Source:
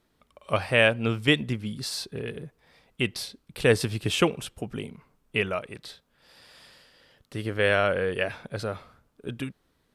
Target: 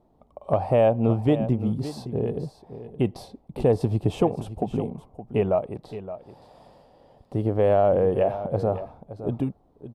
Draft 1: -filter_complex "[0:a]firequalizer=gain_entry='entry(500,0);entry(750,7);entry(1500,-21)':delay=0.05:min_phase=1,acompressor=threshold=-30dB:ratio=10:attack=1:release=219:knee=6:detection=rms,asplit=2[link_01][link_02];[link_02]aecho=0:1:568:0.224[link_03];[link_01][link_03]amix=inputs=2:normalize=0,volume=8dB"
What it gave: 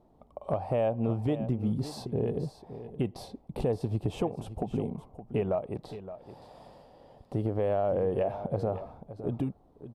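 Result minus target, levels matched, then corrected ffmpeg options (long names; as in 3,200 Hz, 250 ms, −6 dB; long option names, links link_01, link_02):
downward compressor: peak gain reduction +9 dB
-filter_complex "[0:a]firequalizer=gain_entry='entry(500,0);entry(750,7);entry(1500,-21)':delay=0.05:min_phase=1,acompressor=threshold=-20dB:ratio=10:attack=1:release=219:knee=6:detection=rms,asplit=2[link_01][link_02];[link_02]aecho=0:1:568:0.224[link_03];[link_01][link_03]amix=inputs=2:normalize=0,volume=8dB"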